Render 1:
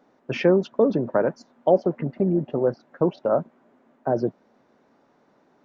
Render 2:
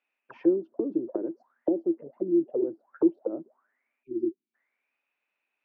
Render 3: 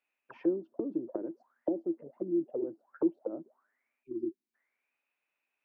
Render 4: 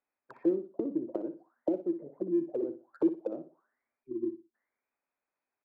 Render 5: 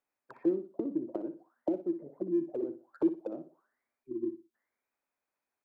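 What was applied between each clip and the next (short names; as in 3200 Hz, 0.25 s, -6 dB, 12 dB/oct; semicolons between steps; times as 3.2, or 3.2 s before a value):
auto-wah 330–2600 Hz, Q 16, down, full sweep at -19.5 dBFS; spectral delete 4.03–4.54, 390–2200 Hz; gain +6 dB
dynamic EQ 400 Hz, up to -5 dB, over -35 dBFS, Q 1.9; gain -3 dB
Wiener smoothing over 15 samples; on a send: feedback echo 60 ms, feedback 25%, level -11 dB; on the sum: gain +1.5 dB
dynamic EQ 490 Hz, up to -5 dB, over -46 dBFS, Q 2.9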